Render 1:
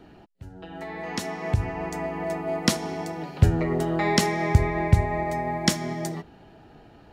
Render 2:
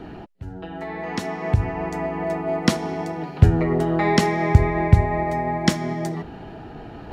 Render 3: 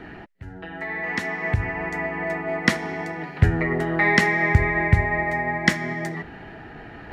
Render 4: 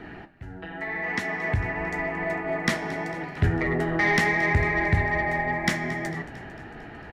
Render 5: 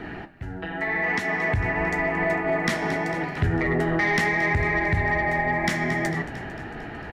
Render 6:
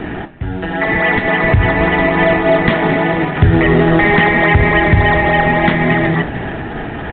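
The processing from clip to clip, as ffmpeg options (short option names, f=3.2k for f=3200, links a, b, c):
-af "highshelf=f=3.9k:g=-10.5,areverse,acompressor=mode=upward:threshold=-32dB:ratio=2.5,areverse,bandreject=f=570:w=12,volume=4.5dB"
-af "equalizer=f=1.9k:w=1.9:g=14.5,volume=-4dB"
-filter_complex "[0:a]asoftclip=type=tanh:threshold=-12.5dB,flanger=delay=8.7:depth=9.8:regen=-67:speed=0.83:shape=triangular,asplit=7[a][b][c][d][e][f][g];[b]adelay=225,afreqshift=-37,volume=-17.5dB[h];[c]adelay=450,afreqshift=-74,volume=-21.7dB[i];[d]adelay=675,afreqshift=-111,volume=-25.8dB[j];[e]adelay=900,afreqshift=-148,volume=-30dB[k];[f]adelay=1125,afreqshift=-185,volume=-34.1dB[l];[g]adelay=1350,afreqshift=-222,volume=-38.3dB[m];[a][h][i][j][k][l][m]amix=inputs=7:normalize=0,volume=3dB"
-af "alimiter=limit=-20.5dB:level=0:latency=1:release=161,volume=5.5dB"
-filter_complex "[0:a]asplit=2[a][b];[b]acrusher=samples=18:mix=1:aa=0.000001:lfo=1:lforange=18:lforate=3.5,volume=-4dB[c];[a][c]amix=inputs=2:normalize=0,volume=9dB" -ar 8000 -c:a pcm_mulaw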